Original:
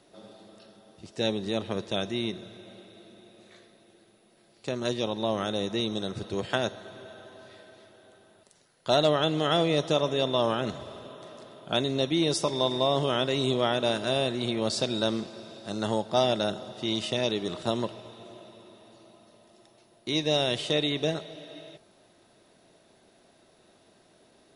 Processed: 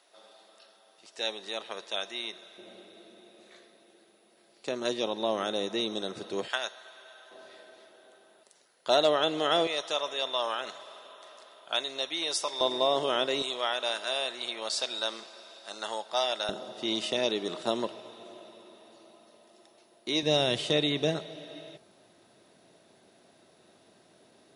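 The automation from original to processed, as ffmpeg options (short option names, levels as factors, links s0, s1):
-af "asetnsamples=n=441:p=0,asendcmd='2.58 highpass f 290;6.48 highpass f 1000;7.31 highpass f 360;9.67 highpass f 830;12.61 highpass f 370;13.42 highpass f 830;16.49 highpass f 270;20.23 highpass f 100',highpass=770"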